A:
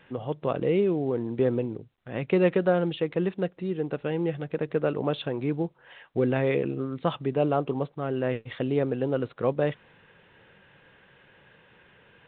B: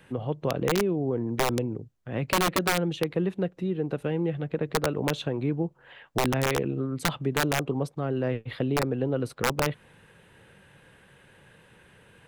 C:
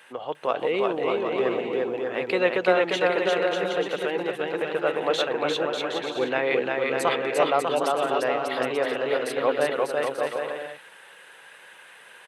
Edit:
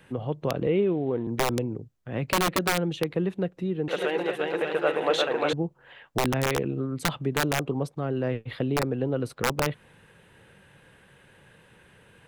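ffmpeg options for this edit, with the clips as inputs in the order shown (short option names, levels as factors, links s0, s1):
-filter_complex "[1:a]asplit=3[s0][s1][s2];[s0]atrim=end=0.672[s3];[0:a]atrim=start=0.668:end=1.272[s4];[s1]atrim=start=1.268:end=3.882[s5];[2:a]atrim=start=3.878:end=5.532[s6];[s2]atrim=start=5.528[s7];[s3][s4]acrossfade=d=0.004:c1=hsin:c2=hsin[s8];[s8][s5]acrossfade=d=0.004:c1=hsin:c2=hsin[s9];[s9][s6]acrossfade=d=0.004:c1=hsin:c2=hsin[s10];[s10][s7]acrossfade=d=0.004:c1=hsin:c2=hsin"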